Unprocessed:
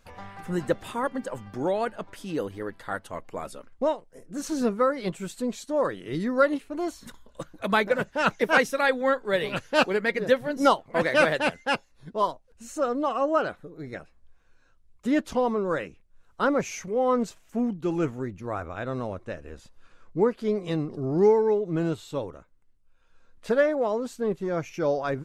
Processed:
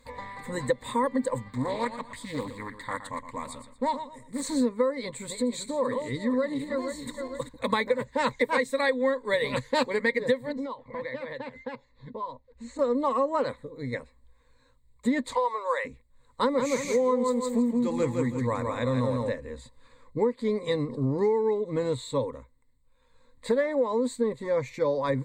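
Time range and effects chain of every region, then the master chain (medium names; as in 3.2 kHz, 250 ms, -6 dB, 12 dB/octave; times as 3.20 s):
1.48–4.42 s: peaking EQ 470 Hz -13 dB 0.76 oct + feedback delay 117 ms, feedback 29%, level -11 dB + loudspeaker Doppler distortion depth 0.44 ms
4.97–7.49 s: backward echo that repeats 231 ms, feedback 57%, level -10 dB + compression 2:1, threshold -32 dBFS
10.52–12.79 s: compression 16:1, threshold -34 dBFS + distance through air 160 m
15.32–15.85 s: high-pass 630 Hz 24 dB/octave + three bands compressed up and down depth 40%
16.41–19.29 s: treble shelf 3.7 kHz +7 dB + feedback delay 165 ms, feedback 29%, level -4 dB
whole clip: rippled EQ curve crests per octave 1, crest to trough 17 dB; compression 10:1, threshold -21 dBFS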